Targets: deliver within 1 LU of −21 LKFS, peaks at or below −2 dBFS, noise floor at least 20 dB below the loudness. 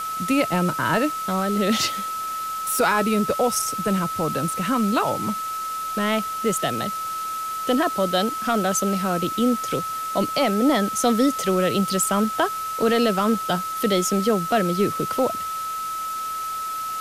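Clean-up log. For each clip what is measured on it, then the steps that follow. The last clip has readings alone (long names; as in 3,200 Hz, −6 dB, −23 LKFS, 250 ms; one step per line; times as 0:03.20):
interfering tone 1,300 Hz; level of the tone −26 dBFS; background noise floor −29 dBFS; target noise floor −43 dBFS; integrated loudness −22.5 LKFS; sample peak −9.0 dBFS; target loudness −21.0 LKFS
→ notch filter 1,300 Hz, Q 30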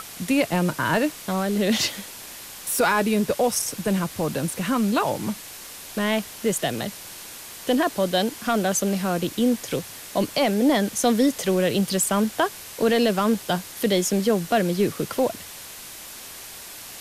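interfering tone none found; background noise floor −40 dBFS; target noise floor −44 dBFS
→ broadband denoise 6 dB, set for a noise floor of −40 dBFS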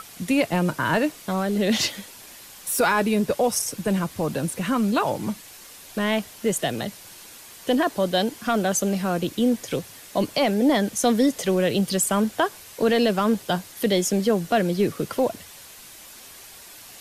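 background noise floor −45 dBFS; integrated loudness −23.5 LKFS; sample peak −10.0 dBFS; target loudness −21.0 LKFS
→ level +2.5 dB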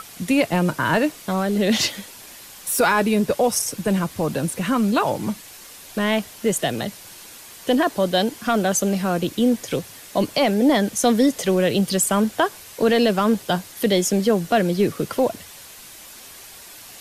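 integrated loudness −21.0 LKFS; sample peak −7.5 dBFS; background noise floor −42 dBFS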